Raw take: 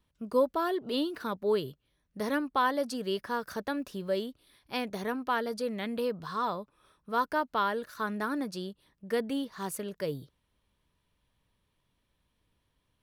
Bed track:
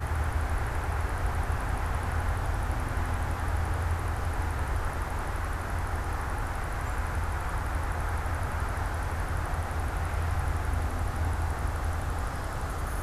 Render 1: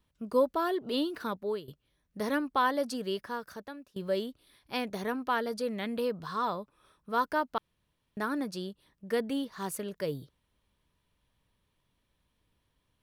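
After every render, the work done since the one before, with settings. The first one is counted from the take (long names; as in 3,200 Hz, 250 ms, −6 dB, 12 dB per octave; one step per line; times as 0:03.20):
0:01.28–0:01.68: fade out, to −15.5 dB
0:02.94–0:03.96: fade out, to −23 dB
0:07.58–0:08.17: fill with room tone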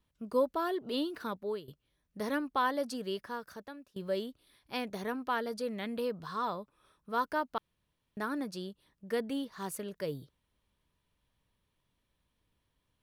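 level −3 dB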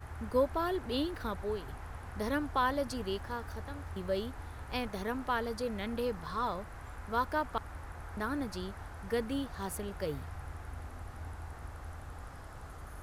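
mix in bed track −14.5 dB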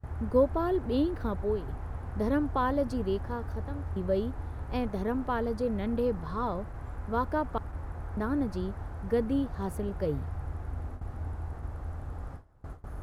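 noise gate with hold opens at −37 dBFS
tilt shelving filter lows +8 dB, about 1,100 Hz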